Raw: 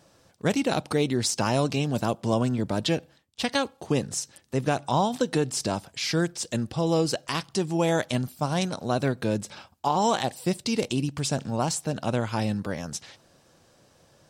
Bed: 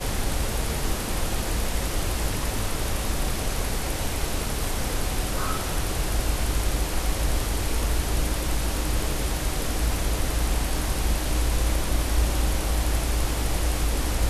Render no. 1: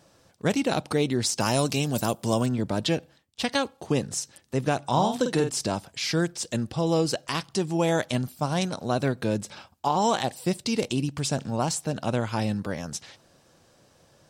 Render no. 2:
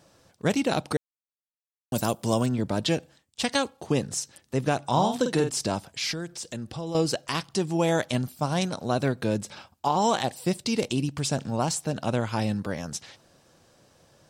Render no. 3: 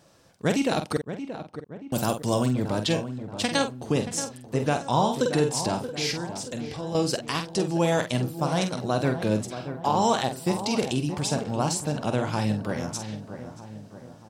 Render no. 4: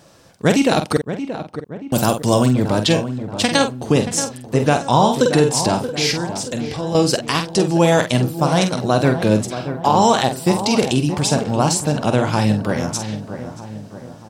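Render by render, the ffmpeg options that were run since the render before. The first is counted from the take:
ffmpeg -i in.wav -filter_complex "[0:a]asettb=1/sr,asplit=3[link_01][link_02][link_03];[link_01]atrim=end=1.404[link_04];[link_02]atrim=start=1.4:end=2.46,asetpts=PTS-STARTPTS,afade=type=in:duration=0.004:curve=qsin,afade=type=out:start_time=1.056:duration=0.004:curve=qsin,aemphasis=mode=production:type=50fm[link_05];[link_03]atrim=start=2.456[link_06];[link_04][link_05]acrossfade=duration=0.004:curve1=hsin:curve2=qsin[link_07];[link_07][link_06]acrossfade=duration=0.004:curve1=qsin:curve2=hsin,asettb=1/sr,asplit=3[link_08][link_09][link_10];[link_08]atrim=end=4.834[link_11];[link_09]atrim=start=4.83:end=5.5,asetpts=PTS-STARTPTS,afade=type=in:duration=0.004:curve=qsin,afade=type=out:start_time=0.666:duration=0.004:curve=qsin,asplit=2[link_12][link_13];[link_13]adelay=49,volume=-6.5dB[link_14];[link_12][link_14]amix=inputs=2:normalize=0,atrim=end_sample=29547[link_15];[link_10]atrim=start=5.496[link_16];[link_11][link_15]acrossfade=duration=0.004:curve1=hsin:curve2=qsin[link_17];[link_17][link_16]acrossfade=duration=0.004:curve1=qsin:curve2=hsin" out.wav
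ffmpeg -i in.wav -filter_complex "[0:a]asettb=1/sr,asplit=3[link_01][link_02][link_03];[link_01]atrim=end=2.884[link_04];[link_02]atrim=start=2.88:end=3.7,asetpts=PTS-STARTPTS,afade=type=in:duration=0.004:curve=qsin,afade=type=out:start_time=0.816:duration=0.004:curve=qsin,equalizer=frequency=7700:width_type=o:width=0.74:gain=6.5[link_05];[link_03]atrim=start=3.696[link_06];[link_04][link_05]acrossfade=duration=0.004:curve1=hsin:curve2=qsin[link_07];[link_07][link_06]acrossfade=duration=0.004:curve1=qsin:curve2=hsin,asettb=1/sr,asplit=3[link_08][link_09][link_10];[link_08]atrim=end=6.124[link_11];[link_09]atrim=start=6.12:end=6.95,asetpts=PTS-STARTPTS,afade=type=in:duration=0.004:curve=qsin,afade=type=out:start_time=0.826:duration=0.004:curve=qsin,acompressor=threshold=-34dB:ratio=2.5:attack=3.2:release=140:knee=1:detection=peak[link_12];[link_10]atrim=start=6.946[link_13];[link_11][link_12]acrossfade=duration=0.004:curve1=hsin:curve2=qsin[link_14];[link_14][link_13]acrossfade=duration=0.004:curve1=qsin:curve2=hsin,asplit=3[link_15][link_16][link_17];[link_15]atrim=end=0.97,asetpts=PTS-STARTPTS,afade=type=out:start_time=0.966:duration=0.004:curve=hsin[link_18];[link_16]atrim=start=0.97:end=1.92,asetpts=PTS-STARTPTS,volume=0[link_19];[link_17]atrim=start=1.92,asetpts=PTS-STARTPTS,afade=type=in:duration=0.004:curve=hsin[link_20];[link_18][link_19][link_20]concat=n=3:v=0:a=1" out.wav
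ffmpeg -i in.wav -filter_complex "[0:a]asplit=2[link_01][link_02];[link_02]adelay=47,volume=-8dB[link_03];[link_01][link_03]amix=inputs=2:normalize=0,asplit=2[link_04][link_05];[link_05]adelay=628,lowpass=frequency=1600:poles=1,volume=-10dB,asplit=2[link_06][link_07];[link_07]adelay=628,lowpass=frequency=1600:poles=1,volume=0.52,asplit=2[link_08][link_09];[link_09]adelay=628,lowpass=frequency=1600:poles=1,volume=0.52,asplit=2[link_10][link_11];[link_11]adelay=628,lowpass=frequency=1600:poles=1,volume=0.52,asplit=2[link_12][link_13];[link_13]adelay=628,lowpass=frequency=1600:poles=1,volume=0.52,asplit=2[link_14][link_15];[link_15]adelay=628,lowpass=frequency=1600:poles=1,volume=0.52[link_16];[link_06][link_08][link_10][link_12][link_14][link_16]amix=inputs=6:normalize=0[link_17];[link_04][link_17]amix=inputs=2:normalize=0" out.wav
ffmpeg -i in.wav -af "volume=9dB,alimiter=limit=-3dB:level=0:latency=1" out.wav

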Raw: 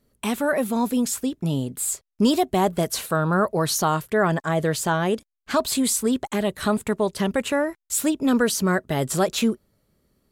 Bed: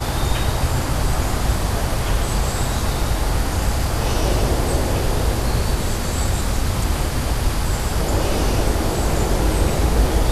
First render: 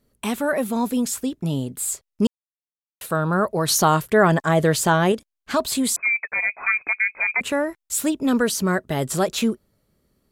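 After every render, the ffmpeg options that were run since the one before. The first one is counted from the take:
ffmpeg -i in.wav -filter_complex "[0:a]asettb=1/sr,asplit=3[link_01][link_02][link_03];[link_01]atrim=end=5.964[link_04];[link_02]atrim=start=5.96:end=7.41,asetpts=PTS-STARTPTS,afade=type=in:duration=0.004:curve=qsin,afade=type=out:start_time=1.446:duration=0.004:curve=qsin,lowpass=frequency=2200:width_type=q:width=0.5098,lowpass=frequency=2200:width_type=q:width=0.6013,lowpass=frequency=2200:width_type=q:width=0.9,lowpass=frequency=2200:width_type=q:width=2.563,afreqshift=-2600[link_05];[link_03]atrim=start=7.406[link_06];[link_04][link_05]acrossfade=duration=0.004:curve1=hsin:curve2=qsin[link_07];[link_07][link_06]acrossfade=duration=0.004:curve1=qsin:curve2=hsin,asplit=5[link_08][link_09][link_10][link_11][link_12];[link_08]atrim=end=2.27,asetpts=PTS-STARTPTS,afade=type=out:start_time=2.266:duration=0.004:curve=hsin[link_13];[link_09]atrim=start=2.27:end=3.01,asetpts=PTS-STARTPTS,volume=0[link_14];[link_10]atrim=start=3.01:end=3.682,asetpts=PTS-STARTPTS,afade=type=in:duration=0.004:curve=hsin[link_15];[link_11]atrim=start=3.678:end=5.122,asetpts=PTS-STARTPTS,volume=4.5dB[link_16];[link_12]atrim=start=5.118[link_17];[link_13][link_14][link_15]concat=n=3:v=0:a=1[link_18];[link_18][link_16]acrossfade=duration=0.004:curve1=hsin:curve2=hsin[link_19];[link_19][link_17]acrossfade=duration=0.004:curve1=hsin:curve2=hsin" out.wav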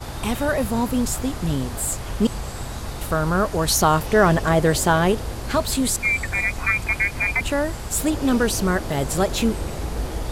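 ffmpeg -i in.wav -i bed.wav -filter_complex "[1:a]volume=-10dB[link_01];[0:a][link_01]amix=inputs=2:normalize=0" out.wav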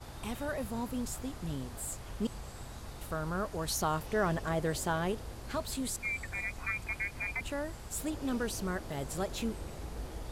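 ffmpeg -i in.wav -af "volume=-14.5dB" out.wav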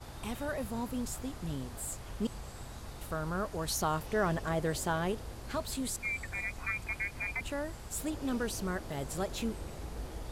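ffmpeg -i in.wav -af anull out.wav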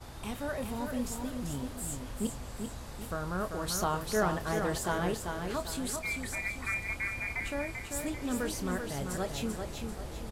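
ffmpeg -i in.wav -filter_complex "[0:a]asplit=2[link_01][link_02];[link_02]adelay=28,volume=-11dB[link_03];[link_01][link_03]amix=inputs=2:normalize=0,asplit=2[link_04][link_05];[link_05]aecho=0:1:391|782|1173|1564|1955:0.531|0.218|0.0892|0.0366|0.015[link_06];[link_04][link_06]amix=inputs=2:normalize=0" out.wav

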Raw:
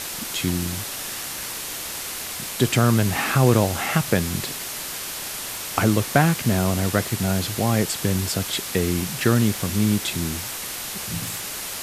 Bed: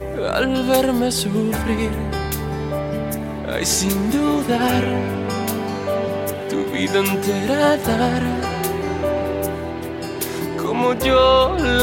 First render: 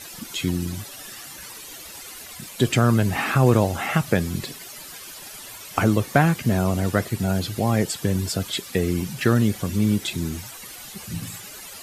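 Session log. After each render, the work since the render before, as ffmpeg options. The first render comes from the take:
ffmpeg -i in.wav -af "afftdn=noise_reduction=13:noise_floor=-32" out.wav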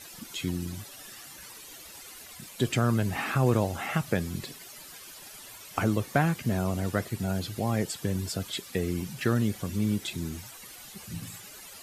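ffmpeg -i in.wav -af "volume=-7dB" out.wav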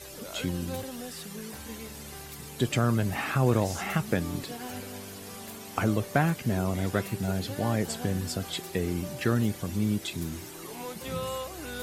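ffmpeg -i in.wav -i bed.wav -filter_complex "[1:a]volume=-21.5dB[link_01];[0:a][link_01]amix=inputs=2:normalize=0" out.wav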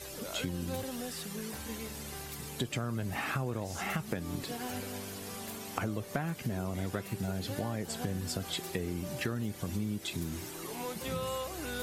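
ffmpeg -i in.wav -af "acompressor=threshold=-31dB:ratio=6" out.wav

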